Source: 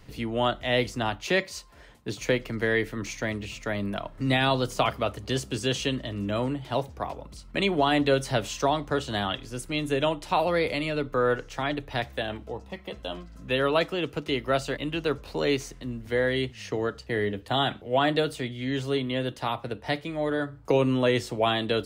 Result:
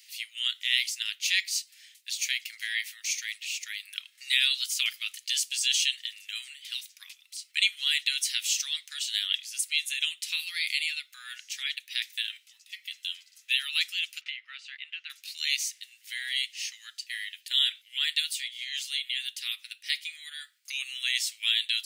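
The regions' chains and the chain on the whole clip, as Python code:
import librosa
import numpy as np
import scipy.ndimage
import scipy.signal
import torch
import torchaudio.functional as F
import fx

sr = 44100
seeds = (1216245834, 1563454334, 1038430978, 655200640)

y = fx.chain(x, sr, fx.lowpass(hz=1600.0, slope=12),
    fx.band_squash(depth_pct=100), at=(14.21, 15.1))
y = scipy.signal.sosfilt(scipy.signal.butter(6, 2100.0, 'highpass', fs=sr, output='sos'), y)
y = fx.high_shelf(y, sr, hz=3000.0, db=12.0)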